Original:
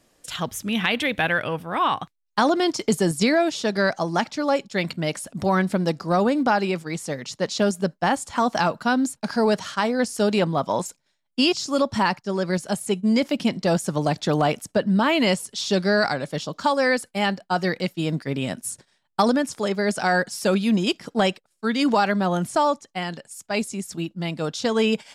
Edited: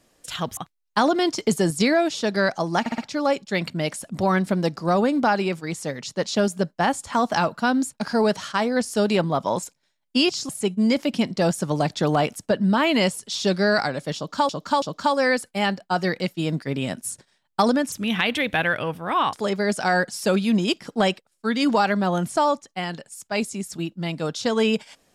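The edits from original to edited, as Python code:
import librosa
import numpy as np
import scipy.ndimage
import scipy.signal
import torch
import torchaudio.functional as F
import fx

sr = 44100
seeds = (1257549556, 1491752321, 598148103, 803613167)

y = fx.edit(x, sr, fx.move(start_s=0.57, length_s=1.41, to_s=19.52),
    fx.stutter(start_s=4.21, slice_s=0.06, count=4),
    fx.cut(start_s=11.72, length_s=1.03),
    fx.repeat(start_s=16.42, length_s=0.33, count=3), tone=tone)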